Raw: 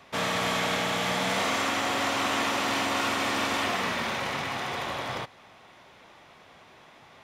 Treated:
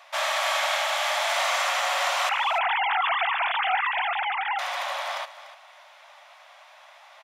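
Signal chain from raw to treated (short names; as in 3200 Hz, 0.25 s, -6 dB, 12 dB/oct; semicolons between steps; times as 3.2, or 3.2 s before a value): 2.29–4.59 sine-wave speech; brick-wall FIR high-pass 540 Hz; echo 0.292 s -15 dB; gain +3 dB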